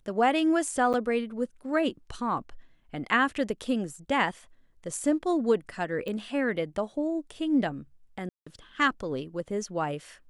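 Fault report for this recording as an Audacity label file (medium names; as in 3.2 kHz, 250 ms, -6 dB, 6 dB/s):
0.930000	0.940000	dropout 8.4 ms
6.080000	6.080000	pop -24 dBFS
8.290000	8.460000	dropout 175 ms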